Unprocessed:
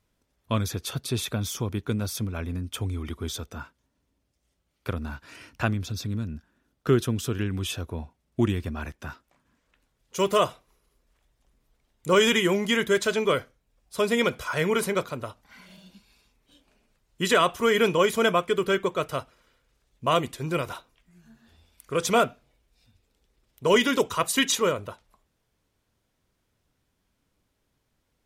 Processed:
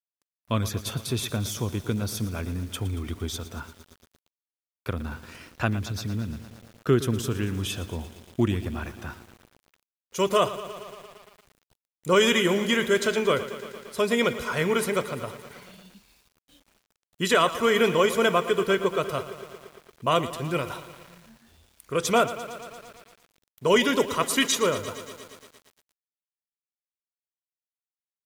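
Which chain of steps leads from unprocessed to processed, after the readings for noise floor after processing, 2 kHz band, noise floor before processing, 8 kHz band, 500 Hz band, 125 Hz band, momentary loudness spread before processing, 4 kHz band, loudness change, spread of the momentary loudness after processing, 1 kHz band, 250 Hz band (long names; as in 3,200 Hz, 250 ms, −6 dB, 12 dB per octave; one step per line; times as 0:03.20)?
below −85 dBFS, +0.5 dB, −75 dBFS, +0.5 dB, +0.5 dB, +0.5 dB, 15 LU, +0.5 dB, 0.0 dB, 18 LU, +0.5 dB, +0.5 dB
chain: bit reduction 10 bits
feedback echo at a low word length 115 ms, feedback 80%, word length 7 bits, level −14 dB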